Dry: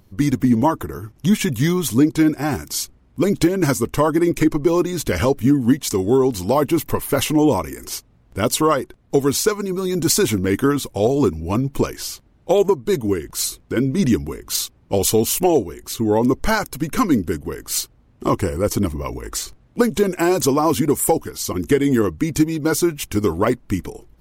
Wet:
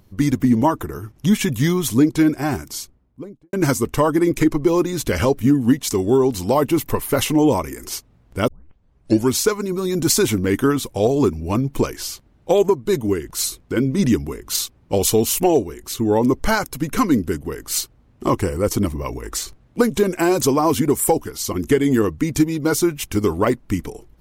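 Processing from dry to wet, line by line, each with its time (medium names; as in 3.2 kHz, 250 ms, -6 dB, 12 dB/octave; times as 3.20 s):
2.40–3.53 s: studio fade out
8.48 s: tape start 0.86 s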